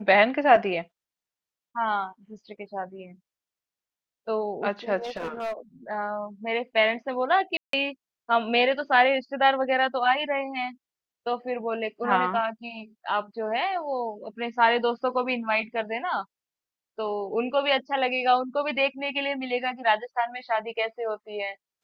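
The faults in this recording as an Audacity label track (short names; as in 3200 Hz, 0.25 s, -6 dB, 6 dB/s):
5.030000	5.530000	clipped -27 dBFS
7.570000	7.730000	gap 0.163 s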